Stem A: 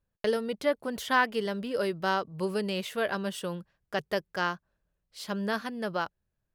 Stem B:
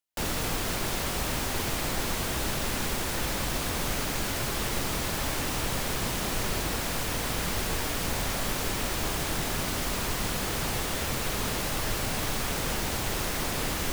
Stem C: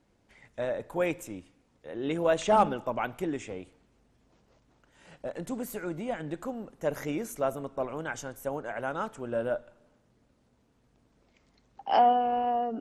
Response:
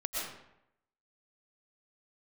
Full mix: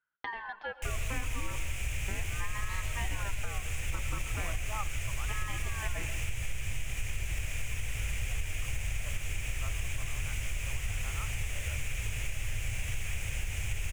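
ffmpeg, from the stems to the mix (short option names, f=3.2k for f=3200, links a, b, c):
-filter_complex "[0:a]lowpass=f=2.4k:w=0.5412,lowpass=f=2.4k:w=1.3066,acompressor=threshold=-30dB:ratio=4,aeval=exprs='val(0)*sin(2*PI*1100*n/s+1100*0.35/0.37*sin(2*PI*0.37*n/s))':c=same,volume=-5dB,asplit=3[a][b][c];[a]atrim=end=1.56,asetpts=PTS-STARTPTS,afade=t=out:st=1.556:d=0.004:c=hsin[d];[b]atrim=start=1.56:end=2.08,asetpts=PTS-STARTPTS,volume=0[e];[c]atrim=start=2.08,asetpts=PTS-STARTPTS,afade=t=in:d=0.004:c=hsin[f];[d][e][f]concat=n=3:v=0:a=1,asplit=2[g][h];[h]volume=-12.5dB[i];[1:a]firequalizer=gain_entry='entry(100,0);entry(170,-19);entry(270,-24);entry(510,-19);entry(1100,-23);entry(2400,-1);entry(4200,-24);entry(6700,-7);entry(15000,-19)':delay=0.05:min_phase=1,adelay=650,volume=1dB,asplit=2[j][k];[k]volume=-9.5dB[l];[2:a]bandpass=f=1.2k:t=q:w=4.6:csg=0,adelay=2200,volume=-7.5dB[m];[3:a]atrim=start_sample=2205[n];[i][l]amix=inputs=2:normalize=0[o];[o][n]afir=irnorm=-1:irlink=0[p];[g][j][m][p]amix=inputs=4:normalize=0,acompressor=threshold=-28dB:ratio=6"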